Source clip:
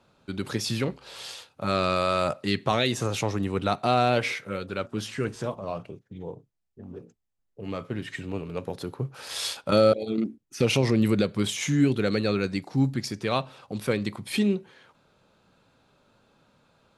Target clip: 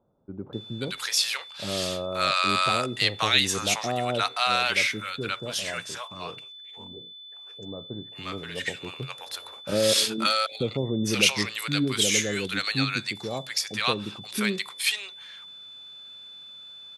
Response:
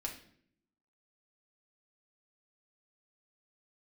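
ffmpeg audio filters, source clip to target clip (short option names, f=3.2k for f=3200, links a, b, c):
-filter_complex "[0:a]aeval=exprs='val(0)+0.00316*sin(2*PI*3500*n/s)':c=same,tiltshelf=f=930:g=-7.5,acrossover=split=730[a][b];[b]adelay=530[c];[a][c]amix=inputs=2:normalize=0,volume=1.5dB"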